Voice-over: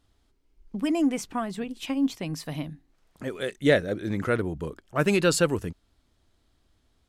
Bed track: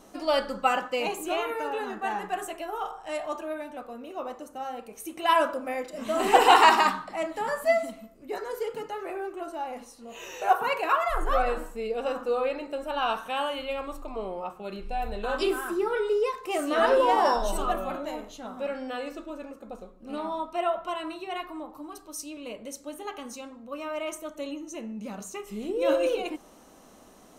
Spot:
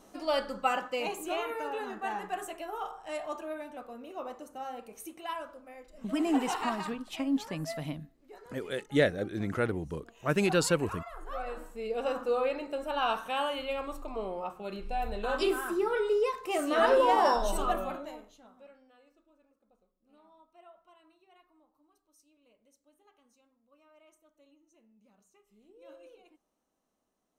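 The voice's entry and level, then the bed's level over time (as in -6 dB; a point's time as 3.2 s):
5.30 s, -4.5 dB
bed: 5.03 s -4.5 dB
5.38 s -17.5 dB
11.15 s -17.5 dB
11.98 s -2 dB
17.82 s -2 dB
18.91 s -28.5 dB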